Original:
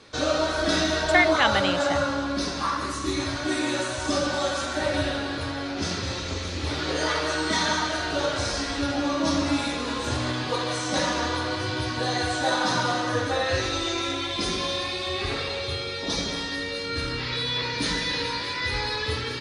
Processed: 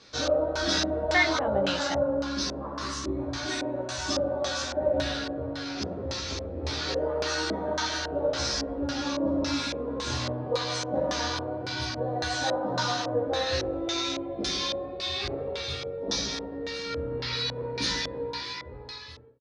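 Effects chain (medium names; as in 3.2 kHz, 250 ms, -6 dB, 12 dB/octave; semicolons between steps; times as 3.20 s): fade out at the end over 1.51 s; doubling 15 ms -2.5 dB; LFO low-pass square 1.8 Hz 570–5600 Hz; trim -6.5 dB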